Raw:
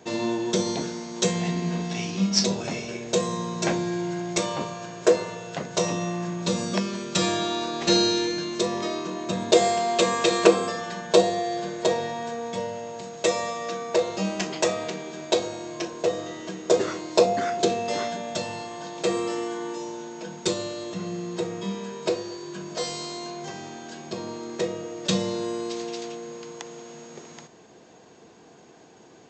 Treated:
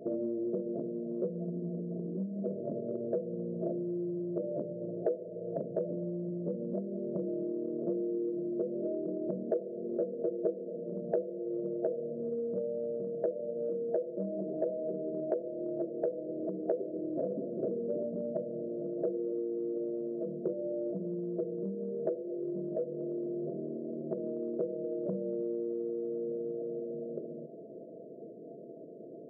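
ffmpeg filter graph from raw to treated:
ffmpeg -i in.wav -filter_complex "[0:a]asettb=1/sr,asplit=3[link_01][link_02][link_03];[link_01]atrim=end=16.934[link_04];[link_02]atrim=start=16.93:end=18.33,asetpts=PTS-STARTPTS,afade=type=in:duration=0.004:curve=qsin,afade=type=out:start_time=1.396:duration=0.004:curve=qsin,lowshelf=frequency=260:gain=6,aeval=exprs='0.119*(abs(mod(val(0)/0.119+3,4)-2)-1)':channel_layout=same[link_05];[link_03]atrim=start=18.326[link_06];[link_04][link_05]acrossfade=duration=0.004:curve1=hsin:curve2=qsin[link_07];[link_07][link_06]acrossfade=duration=0.004:curve1=qsin:curve2=hsin,afftfilt=real='re*between(b*sr/4096,110,680)':imag='im*between(b*sr/4096,110,680)':win_size=4096:overlap=0.75,acompressor=threshold=-38dB:ratio=5,aemphasis=mode=production:type=bsi,volume=8dB" out.wav

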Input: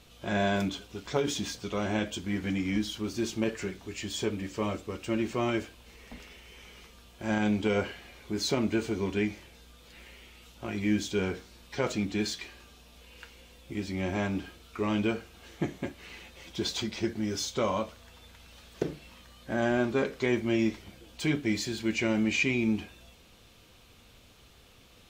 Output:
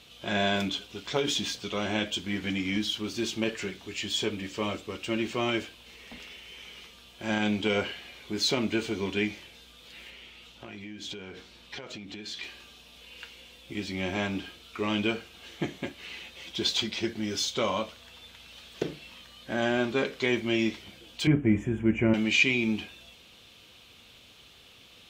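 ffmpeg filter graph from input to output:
ffmpeg -i in.wav -filter_complex "[0:a]asettb=1/sr,asplit=3[link_01][link_02][link_03];[link_01]atrim=end=10.104[link_04];[link_02]atrim=start=10.1:end=12.43,asetpts=PTS-STARTPTS,afade=type=in:duration=0.004:curve=qsin,afade=type=out:start_time=2.326:duration=0.004:curve=qsin,highshelf=frequency=6700:gain=-8,acompressor=threshold=-38dB:ratio=12:attack=3.2:release=140:knee=1:detection=peak[link_05];[link_03]atrim=start=12.426[link_06];[link_04][link_05]acrossfade=duration=0.004:curve1=hsin:curve2=qsin[link_07];[link_07][link_06]acrossfade=duration=0.004:curve1=qsin:curve2=hsin,asettb=1/sr,asplit=3[link_08][link_09][link_10];[link_08]atrim=end=21.274[link_11];[link_09]atrim=start=21.27:end=22.14,asetpts=PTS-STARTPTS,afade=type=in:duration=0.004:curve=qsin,afade=type=out:start_time=0.866:duration=0.004:curve=qsin,asuperstop=centerf=4300:order=4:qfactor=0.73,aemphasis=mode=reproduction:type=riaa[link_12];[link_10]atrim=start=22.136[link_13];[link_11][link_12]acrossfade=duration=0.004:curve1=hsin:curve2=qsin[link_14];[link_14][link_13]acrossfade=duration=0.004:curve1=qsin:curve2=hsin,highpass=frequency=110:poles=1,equalizer=frequency=3200:width_type=o:width=1.1:gain=8.5" out.wav

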